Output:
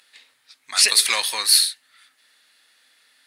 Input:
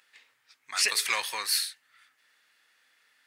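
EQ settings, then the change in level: fifteen-band EQ 250 Hz +6 dB, 630 Hz +4 dB, 4000 Hz +9 dB, 10000 Hz +10 dB; +3.5 dB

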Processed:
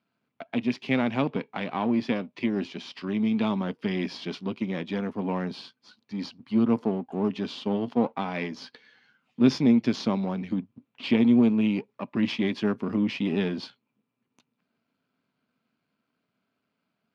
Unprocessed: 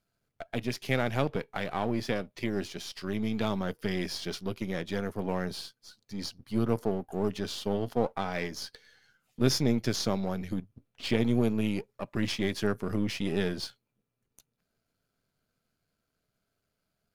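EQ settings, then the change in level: Chebyshev band-pass 160–3600 Hz, order 2; dynamic EQ 1400 Hz, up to -4 dB, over -48 dBFS, Q 0.8; fifteen-band EQ 250 Hz +10 dB, 1000 Hz +9 dB, 2500 Hz +6 dB; 0.0 dB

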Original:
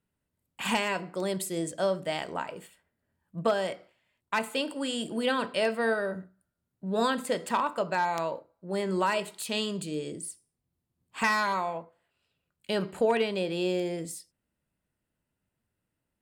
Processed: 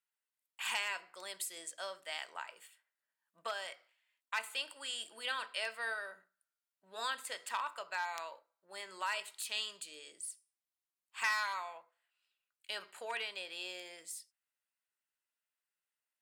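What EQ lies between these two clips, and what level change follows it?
HPF 1300 Hz 12 dB/oct; -4.5 dB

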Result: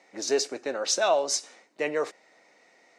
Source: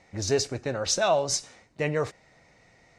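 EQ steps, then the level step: HPF 270 Hz 24 dB/oct; 0.0 dB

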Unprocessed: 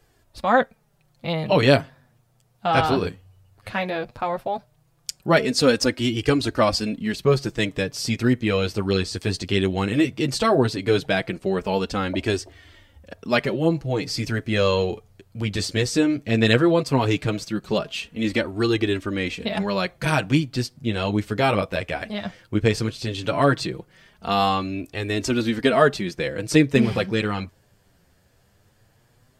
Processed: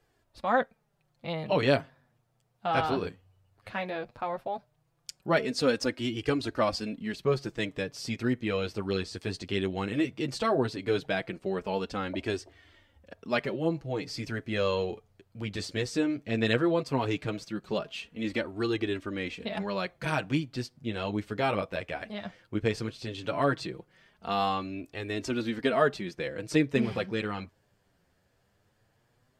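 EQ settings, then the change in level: low shelf 150 Hz -6 dB; high shelf 5100 Hz -7.5 dB; -7.0 dB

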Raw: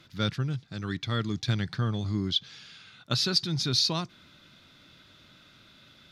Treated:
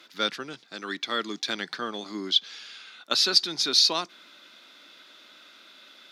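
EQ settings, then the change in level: Bessel high-pass 410 Hz, order 6; +5.5 dB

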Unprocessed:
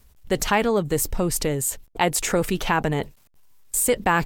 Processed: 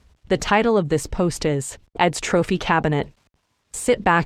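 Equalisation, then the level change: HPF 40 Hz; air absorption 92 m; +3.5 dB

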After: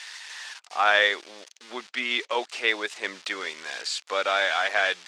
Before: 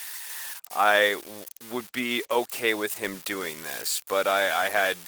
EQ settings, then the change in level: BPF 220–6300 Hz; air absorption 120 m; tilt +3.5 dB/oct; 0.0 dB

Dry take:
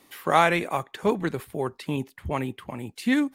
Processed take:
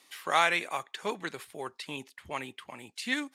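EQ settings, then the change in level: air absorption 75 m; tilt +4.5 dB/oct; -5.5 dB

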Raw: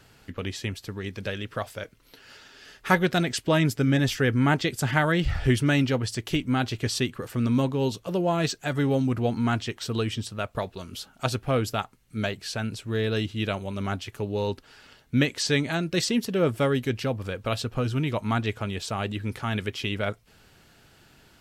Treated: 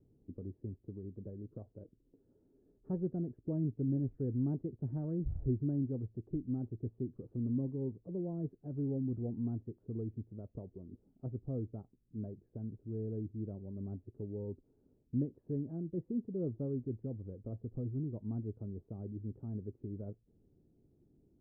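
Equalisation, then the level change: dynamic EQ 320 Hz, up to -5 dB, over -38 dBFS, Q 1.1; ladder low-pass 420 Hz, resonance 40%; air absorption 280 m; -2.5 dB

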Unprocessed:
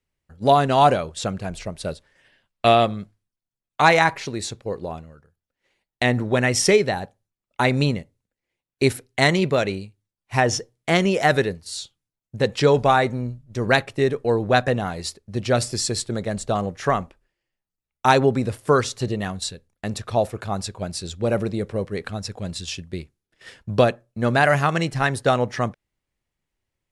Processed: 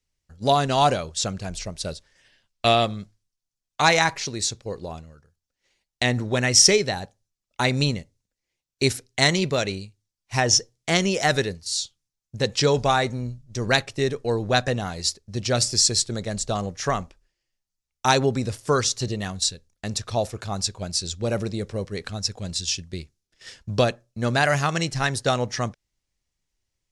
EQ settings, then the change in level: low shelf 83 Hz +9 dB; bell 5800 Hz +13.5 dB 1.4 oct; -4.5 dB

